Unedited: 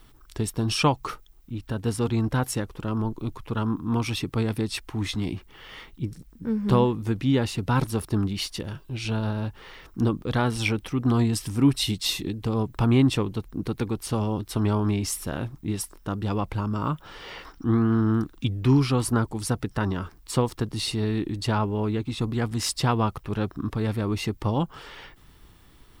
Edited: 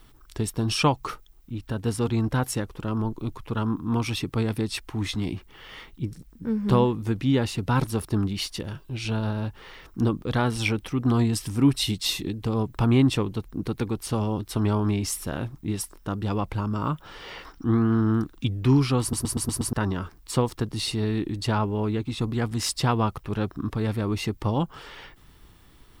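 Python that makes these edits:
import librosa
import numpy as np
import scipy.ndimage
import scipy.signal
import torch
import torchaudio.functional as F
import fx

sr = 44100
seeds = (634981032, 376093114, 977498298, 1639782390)

y = fx.edit(x, sr, fx.stutter_over(start_s=19.01, slice_s=0.12, count=6), tone=tone)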